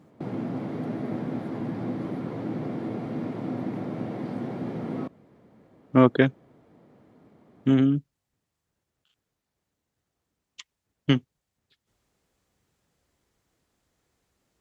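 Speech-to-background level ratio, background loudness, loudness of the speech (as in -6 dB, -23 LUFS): 9.0 dB, -32.5 LUFS, -23.5 LUFS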